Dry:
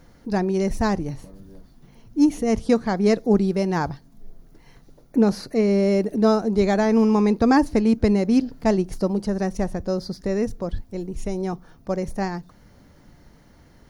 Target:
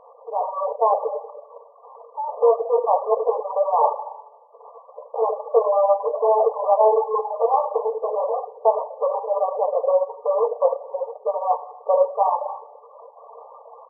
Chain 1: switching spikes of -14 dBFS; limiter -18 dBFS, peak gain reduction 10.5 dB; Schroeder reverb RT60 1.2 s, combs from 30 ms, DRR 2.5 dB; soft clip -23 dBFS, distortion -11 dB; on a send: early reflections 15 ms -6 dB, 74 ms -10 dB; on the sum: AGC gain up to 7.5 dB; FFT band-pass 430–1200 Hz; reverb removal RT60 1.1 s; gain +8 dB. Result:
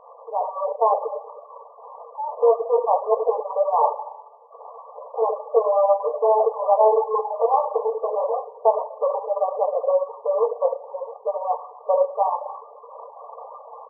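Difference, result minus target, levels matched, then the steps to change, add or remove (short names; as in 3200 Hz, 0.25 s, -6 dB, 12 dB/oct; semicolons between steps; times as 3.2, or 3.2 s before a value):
switching spikes: distortion +11 dB
change: switching spikes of -25.5 dBFS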